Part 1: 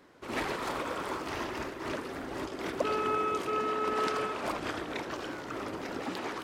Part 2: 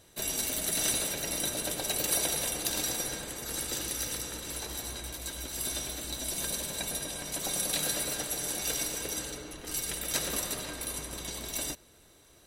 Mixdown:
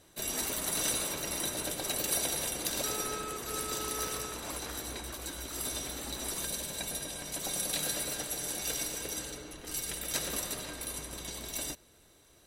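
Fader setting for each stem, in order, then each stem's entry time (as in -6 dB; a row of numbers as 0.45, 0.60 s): -10.0, -2.5 dB; 0.00, 0.00 s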